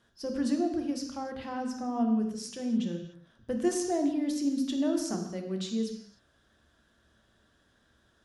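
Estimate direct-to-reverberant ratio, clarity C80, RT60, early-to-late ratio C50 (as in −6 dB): 4.0 dB, 8.5 dB, non-exponential decay, 6.0 dB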